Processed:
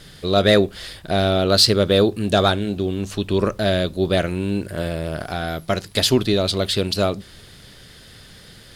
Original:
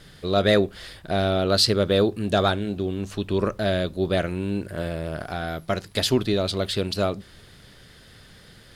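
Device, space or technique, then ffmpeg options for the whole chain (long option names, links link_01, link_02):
exciter from parts: -filter_complex "[0:a]asplit=2[link_01][link_02];[link_02]highpass=2200,asoftclip=type=tanh:threshold=-23.5dB,volume=-6dB[link_03];[link_01][link_03]amix=inputs=2:normalize=0,volume=4dB"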